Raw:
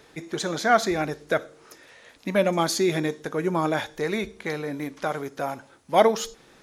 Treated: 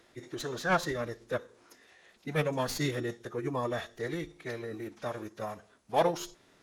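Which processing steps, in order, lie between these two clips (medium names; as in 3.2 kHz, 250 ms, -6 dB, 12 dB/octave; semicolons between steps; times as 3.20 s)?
tracing distortion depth 0.041 ms; formant-preserving pitch shift -4.5 st; trim -8 dB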